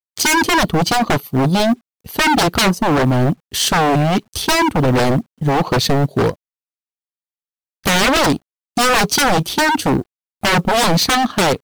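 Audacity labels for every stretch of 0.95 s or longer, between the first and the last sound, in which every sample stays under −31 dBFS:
6.340000	7.850000	silence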